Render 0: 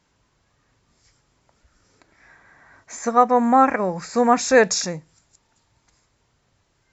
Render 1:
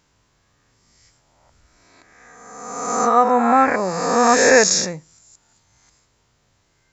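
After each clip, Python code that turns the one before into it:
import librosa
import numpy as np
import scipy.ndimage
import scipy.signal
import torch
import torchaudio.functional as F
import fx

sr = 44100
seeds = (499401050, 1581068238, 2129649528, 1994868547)

y = fx.spec_swells(x, sr, rise_s=1.38)
y = fx.high_shelf(y, sr, hz=4800.0, db=5.0)
y = F.gain(torch.from_numpy(y), -1.0).numpy()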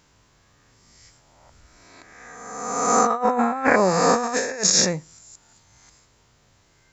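y = fx.over_compress(x, sr, threshold_db=-19.0, ratio=-0.5)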